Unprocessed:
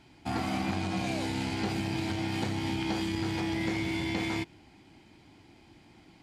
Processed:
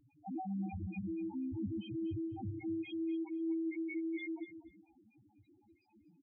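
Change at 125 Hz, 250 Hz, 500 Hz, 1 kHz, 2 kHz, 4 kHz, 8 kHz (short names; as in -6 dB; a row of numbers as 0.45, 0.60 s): -11.0 dB, -5.5 dB, n/a, -14.5 dB, -15.5 dB, -22.5 dB, under -35 dB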